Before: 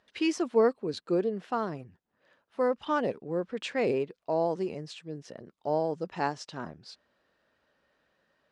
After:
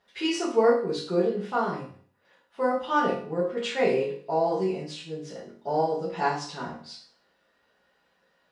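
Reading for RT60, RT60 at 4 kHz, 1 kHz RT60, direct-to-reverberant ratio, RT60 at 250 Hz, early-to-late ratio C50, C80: 0.50 s, 0.45 s, 0.50 s, -9.5 dB, 0.50 s, 5.5 dB, 10.0 dB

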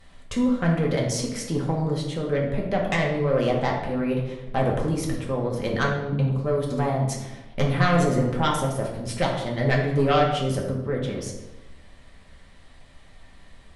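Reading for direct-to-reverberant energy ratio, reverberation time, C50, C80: -2.0 dB, 1.0 s, 4.5 dB, 7.0 dB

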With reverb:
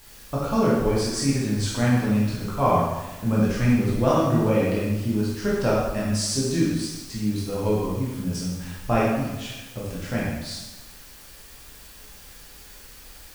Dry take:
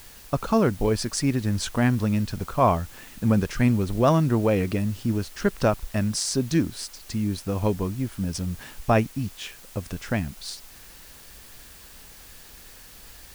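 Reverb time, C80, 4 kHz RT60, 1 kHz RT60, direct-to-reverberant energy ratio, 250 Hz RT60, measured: 1.1 s, 2.5 dB, 1.0 s, 1.1 s, -6.5 dB, 1.2 s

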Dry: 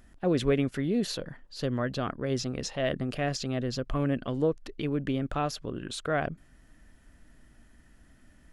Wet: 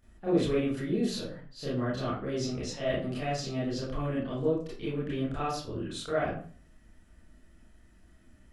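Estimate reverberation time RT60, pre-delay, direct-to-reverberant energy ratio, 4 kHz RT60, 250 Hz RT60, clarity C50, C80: 0.45 s, 25 ms, -9.5 dB, 0.30 s, 0.50 s, 2.0 dB, 8.0 dB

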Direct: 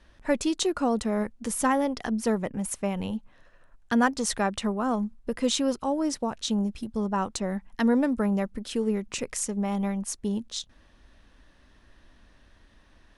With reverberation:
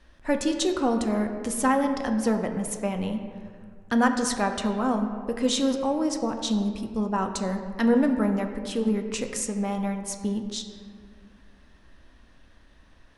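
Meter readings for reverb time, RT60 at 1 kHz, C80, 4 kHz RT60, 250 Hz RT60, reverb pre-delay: 2.0 s, 1.9 s, 8.5 dB, 1.1 s, 2.6 s, 4 ms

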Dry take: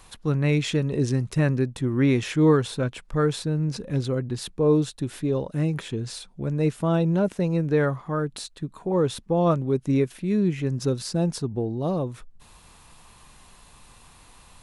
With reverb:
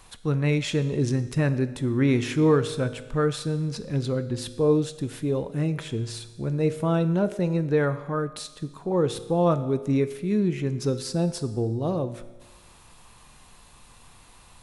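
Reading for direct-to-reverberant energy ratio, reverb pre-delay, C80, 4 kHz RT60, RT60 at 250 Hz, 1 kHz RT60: 11.0 dB, 8 ms, 15.0 dB, 1.2 s, 1.2 s, 1.2 s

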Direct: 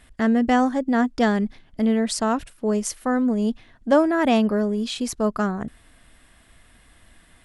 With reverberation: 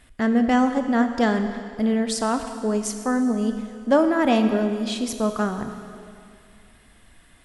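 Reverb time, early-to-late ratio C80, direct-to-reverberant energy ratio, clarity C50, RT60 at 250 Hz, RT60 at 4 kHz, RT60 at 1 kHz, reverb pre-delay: 2.4 s, 9.0 dB, 6.5 dB, 8.0 dB, 2.3 s, 2.2 s, 2.4 s, 4 ms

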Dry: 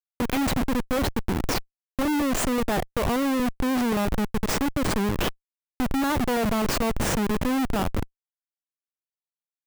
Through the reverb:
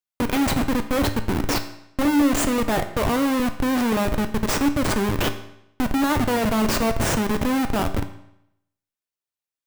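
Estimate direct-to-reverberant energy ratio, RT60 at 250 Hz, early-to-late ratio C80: 7.0 dB, 0.80 s, 14.0 dB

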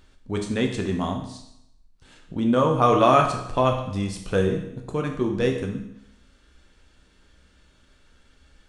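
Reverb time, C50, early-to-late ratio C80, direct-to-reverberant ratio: 0.80 s, 6.5 dB, 9.5 dB, 2.0 dB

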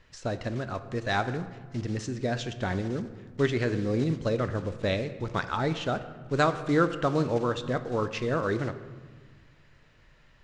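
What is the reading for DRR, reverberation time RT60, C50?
10.0 dB, 1.5 s, 12.5 dB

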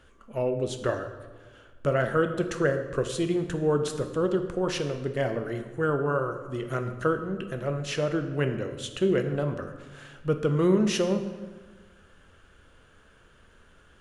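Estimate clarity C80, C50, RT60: 10.5 dB, 9.0 dB, 1.4 s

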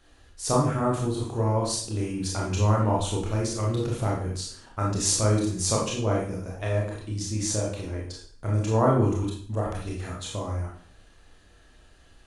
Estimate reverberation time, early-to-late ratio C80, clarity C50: 0.50 s, 8.0 dB, 3.0 dB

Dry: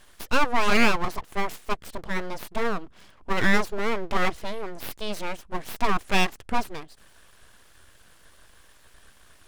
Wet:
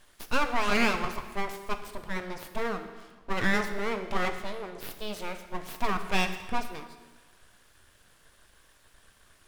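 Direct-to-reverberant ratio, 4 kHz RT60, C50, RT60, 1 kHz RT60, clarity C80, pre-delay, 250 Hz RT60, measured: 7.0 dB, 1.2 s, 9.0 dB, 1.3 s, 1.3 s, 10.5 dB, 5 ms, 1.3 s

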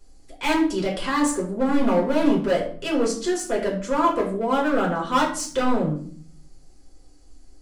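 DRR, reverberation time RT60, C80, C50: -3.0 dB, 0.55 s, 12.0 dB, 8.0 dB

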